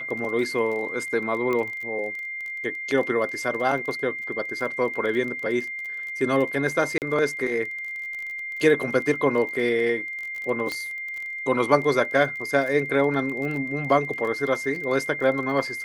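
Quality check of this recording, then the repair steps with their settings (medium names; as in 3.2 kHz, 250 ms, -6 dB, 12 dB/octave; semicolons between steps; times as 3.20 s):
crackle 24 per s -31 dBFS
whine 2.1 kHz -30 dBFS
1.53 s: pop -15 dBFS
6.98–7.02 s: dropout 38 ms
10.72 s: pop -14 dBFS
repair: de-click; band-stop 2.1 kHz, Q 30; interpolate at 6.98 s, 38 ms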